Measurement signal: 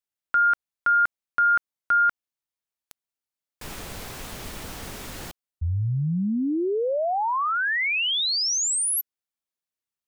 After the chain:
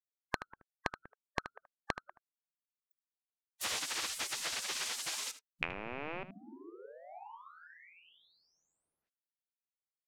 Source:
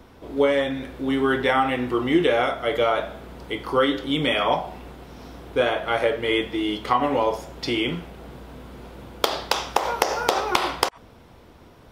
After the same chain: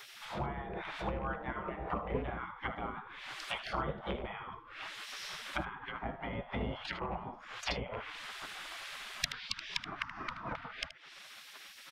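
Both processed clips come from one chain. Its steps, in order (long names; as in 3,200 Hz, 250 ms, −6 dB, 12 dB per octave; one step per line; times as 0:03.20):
loose part that buzzes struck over −27 dBFS, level −19 dBFS
treble cut that deepens with the level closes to 430 Hz, closed at −20 dBFS
in parallel at −0.5 dB: downward compressor 10 to 1, threshold −38 dBFS
on the sum: soft clipping −5.5 dBFS
on a send: single-tap delay 77 ms −14 dB
on the sum: gate on every frequency bin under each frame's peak −20 dB weak
level +4.5 dB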